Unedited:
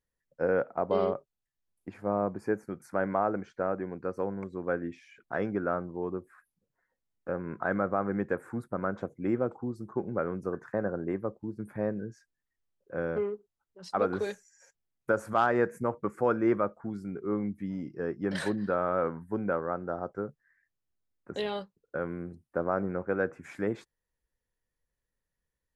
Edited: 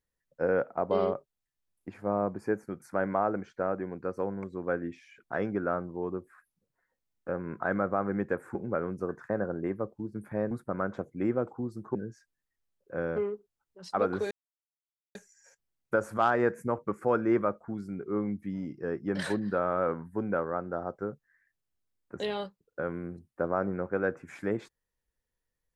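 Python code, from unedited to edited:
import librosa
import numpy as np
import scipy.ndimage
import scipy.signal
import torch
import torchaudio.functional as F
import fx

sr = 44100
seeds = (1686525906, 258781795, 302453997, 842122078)

y = fx.edit(x, sr, fx.move(start_s=8.55, length_s=1.44, to_s=11.95),
    fx.insert_silence(at_s=14.31, length_s=0.84), tone=tone)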